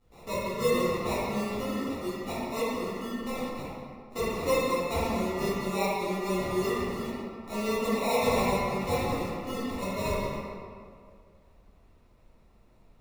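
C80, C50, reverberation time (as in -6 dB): -1.5 dB, -4.0 dB, 2.2 s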